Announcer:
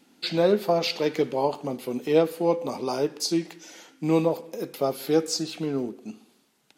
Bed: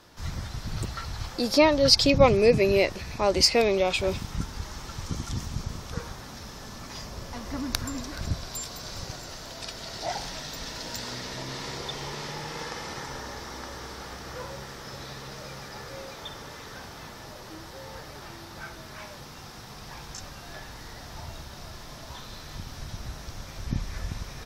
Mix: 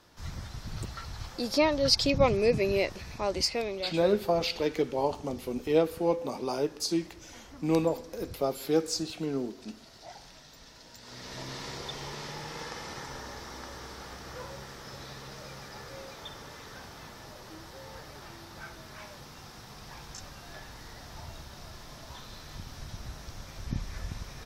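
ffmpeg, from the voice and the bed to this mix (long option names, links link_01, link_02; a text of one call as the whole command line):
ffmpeg -i stem1.wav -i stem2.wav -filter_complex "[0:a]adelay=3600,volume=-4dB[link_01];[1:a]volume=6dB,afade=type=out:start_time=3.09:duration=0.87:silence=0.316228,afade=type=in:start_time=11.01:duration=0.4:silence=0.266073[link_02];[link_01][link_02]amix=inputs=2:normalize=0" out.wav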